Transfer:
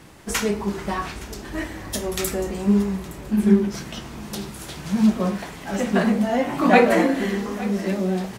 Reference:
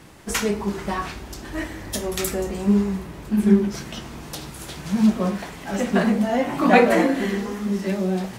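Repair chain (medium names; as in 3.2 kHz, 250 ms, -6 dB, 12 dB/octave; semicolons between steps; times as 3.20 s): inverse comb 866 ms -18.5 dB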